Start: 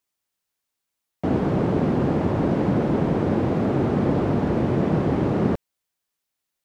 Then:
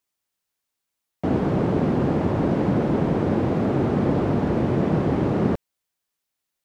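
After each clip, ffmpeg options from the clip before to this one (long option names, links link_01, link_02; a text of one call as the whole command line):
ffmpeg -i in.wav -af anull out.wav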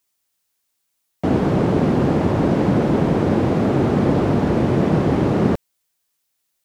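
ffmpeg -i in.wav -af "highshelf=frequency=3900:gain=6.5,volume=4dB" out.wav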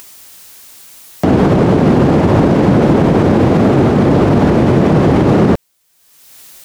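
ffmpeg -i in.wav -af "acompressor=mode=upward:threshold=-30dB:ratio=2.5,alimiter=level_in=12.5dB:limit=-1dB:release=50:level=0:latency=1,volume=-1dB" out.wav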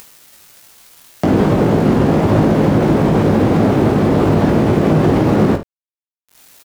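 ffmpeg -i in.wav -af "acompressor=threshold=-15dB:ratio=1.5,aeval=exprs='val(0)*gte(abs(val(0)),0.0266)':channel_layout=same,aecho=1:1:19|51|76:0.531|0.251|0.2,volume=-1dB" out.wav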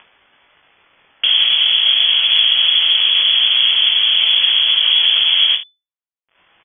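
ffmpeg -i in.wav -af "lowpass=frequency=3000:width_type=q:width=0.5098,lowpass=frequency=3000:width_type=q:width=0.6013,lowpass=frequency=3000:width_type=q:width=0.9,lowpass=frequency=3000:width_type=q:width=2.563,afreqshift=-3500,volume=-1dB" out.wav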